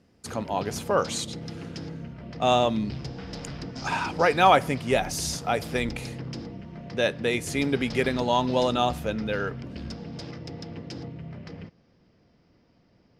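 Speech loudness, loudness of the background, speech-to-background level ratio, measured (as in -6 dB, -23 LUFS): -25.5 LUFS, -38.0 LUFS, 12.5 dB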